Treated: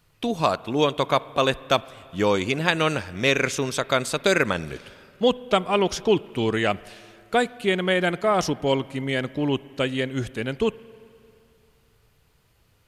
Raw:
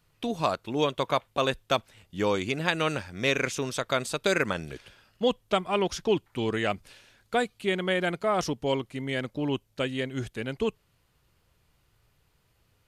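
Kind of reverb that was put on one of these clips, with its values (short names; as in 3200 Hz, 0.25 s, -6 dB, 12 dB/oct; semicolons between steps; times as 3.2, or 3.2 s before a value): spring tank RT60 2.6 s, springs 44/56 ms, chirp 60 ms, DRR 19.5 dB; gain +5 dB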